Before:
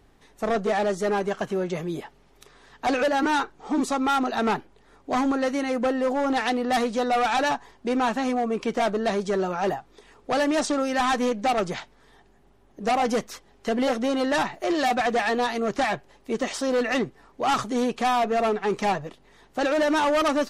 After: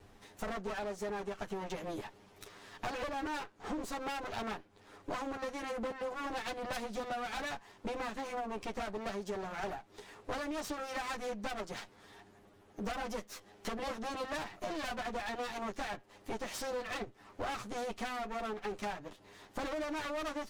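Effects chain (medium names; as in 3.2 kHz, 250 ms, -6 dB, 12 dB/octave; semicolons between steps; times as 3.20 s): comb filter that takes the minimum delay 9.8 ms; compression 6:1, threshold -38 dBFS, peak gain reduction 17 dB; trim +1 dB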